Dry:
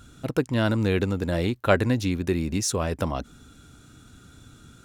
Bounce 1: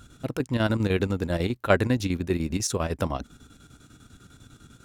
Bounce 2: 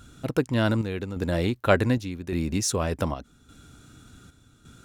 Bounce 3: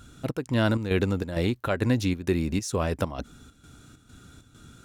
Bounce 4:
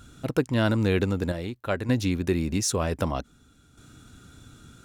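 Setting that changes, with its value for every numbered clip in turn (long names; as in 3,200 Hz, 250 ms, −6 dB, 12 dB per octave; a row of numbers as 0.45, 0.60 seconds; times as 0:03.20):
square-wave tremolo, speed: 10, 0.86, 2.2, 0.53 Hertz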